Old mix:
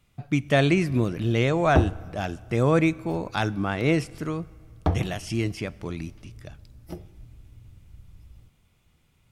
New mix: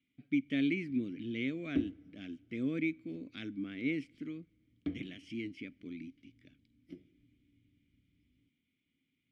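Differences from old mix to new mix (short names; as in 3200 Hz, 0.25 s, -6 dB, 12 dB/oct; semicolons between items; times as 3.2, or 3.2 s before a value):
speech: send -9.5 dB; master: add vowel filter i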